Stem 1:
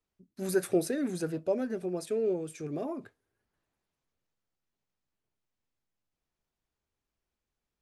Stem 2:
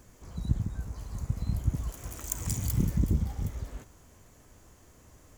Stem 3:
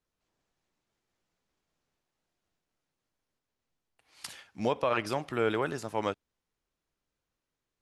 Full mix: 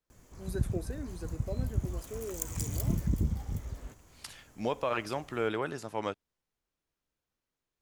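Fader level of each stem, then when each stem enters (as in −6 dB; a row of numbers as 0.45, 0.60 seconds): −11.0, −3.0, −3.0 decibels; 0.00, 0.10, 0.00 seconds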